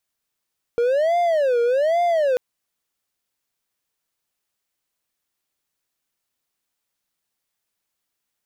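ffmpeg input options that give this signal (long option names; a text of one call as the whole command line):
ffmpeg -f lavfi -i "aevalsrc='0.2*(1-4*abs(mod((585.5*t-114.5/(2*PI*1.2)*sin(2*PI*1.2*t))+0.25,1)-0.5))':duration=1.59:sample_rate=44100" out.wav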